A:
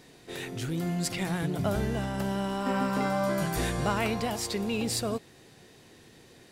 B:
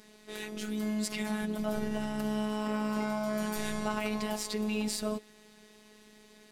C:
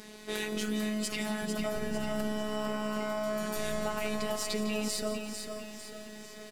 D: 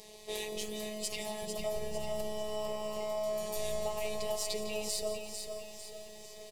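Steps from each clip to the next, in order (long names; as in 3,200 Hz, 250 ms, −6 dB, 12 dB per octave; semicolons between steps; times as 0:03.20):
notch filter 460 Hz, Q 12; brickwall limiter −22 dBFS, peak gain reduction 6 dB; phases set to zero 213 Hz
downward compressor, threshold −36 dBFS, peak gain reduction 10 dB; repeating echo 449 ms, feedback 46%, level −6.5 dB; feedback echo at a low word length 171 ms, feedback 55%, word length 10 bits, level −13 dB; level +8 dB
phaser with its sweep stopped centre 610 Hz, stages 4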